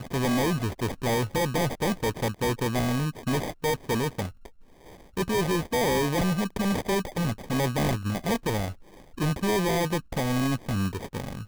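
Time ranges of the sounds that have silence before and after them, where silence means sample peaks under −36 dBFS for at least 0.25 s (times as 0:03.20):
0:05.17–0:08.73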